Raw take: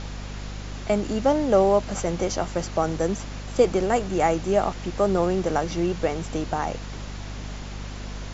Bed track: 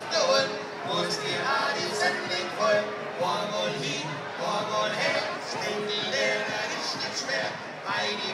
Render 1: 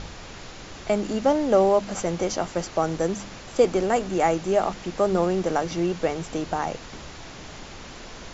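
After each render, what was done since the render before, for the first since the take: de-hum 50 Hz, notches 5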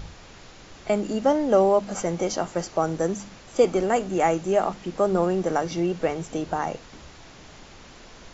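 noise print and reduce 6 dB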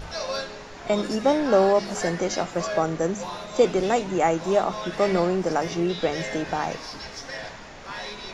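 add bed track -7 dB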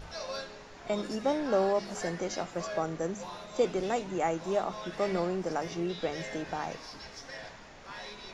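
trim -8.5 dB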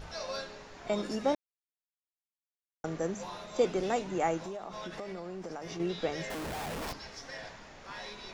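1.35–2.84 s: mute; 4.45–5.80 s: compression 10:1, threshold -36 dBFS; 6.30–6.93 s: Schmitt trigger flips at -44 dBFS

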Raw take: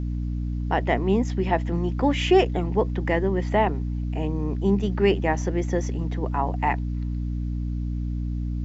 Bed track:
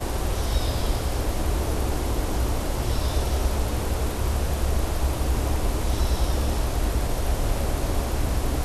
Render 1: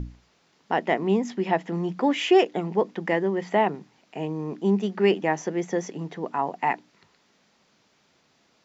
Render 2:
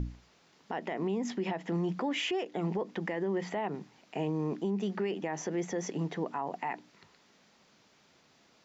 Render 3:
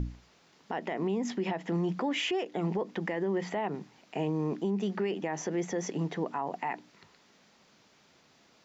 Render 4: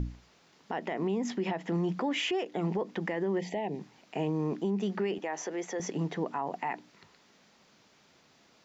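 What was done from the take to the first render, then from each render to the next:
hum notches 60/120/180/240/300 Hz
compression, threshold -23 dBFS, peak gain reduction 10.5 dB; peak limiter -24.5 dBFS, peak gain reduction 11.5 dB
trim +1.5 dB
3.39–3.79 s: Butterworth band-stop 1.3 kHz, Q 1.1; 5.18–5.80 s: high-pass 390 Hz

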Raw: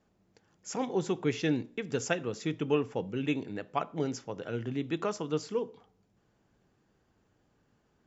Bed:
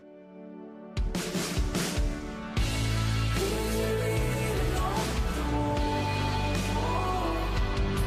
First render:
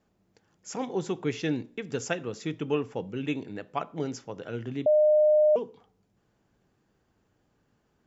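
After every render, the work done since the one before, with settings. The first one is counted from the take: 4.86–5.56 s: bleep 608 Hz -17 dBFS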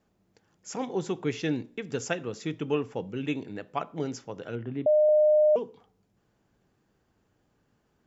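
4.55–5.09 s: Bessel low-pass 1.8 kHz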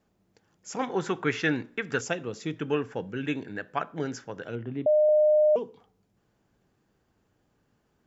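0.79–2.01 s: peaking EQ 1.5 kHz +15 dB 1.2 oct; 2.56–4.44 s: peaking EQ 1.6 kHz +14 dB 0.37 oct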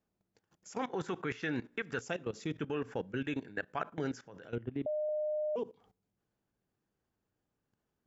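level held to a coarse grid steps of 17 dB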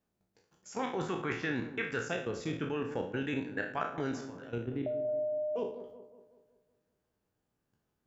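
spectral sustain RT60 0.48 s; feedback echo behind a low-pass 187 ms, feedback 48%, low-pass 1.1 kHz, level -11 dB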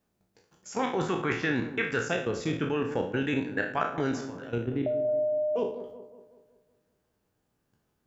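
trim +6 dB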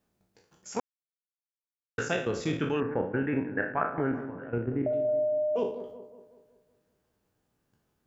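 0.80–1.98 s: mute; 2.80–4.93 s: inverse Chebyshev low-pass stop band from 4 kHz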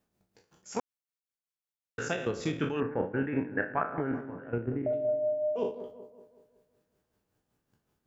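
tremolo 5.3 Hz, depth 48%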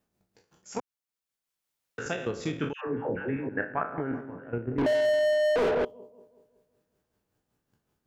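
0.78–2.06 s: three bands compressed up and down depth 40%; 2.73–3.49 s: phase dispersion lows, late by 143 ms, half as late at 720 Hz; 4.78–5.85 s: overdrive pedal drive 37 dB, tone 1.7 kHz, clips at -18 dBFS

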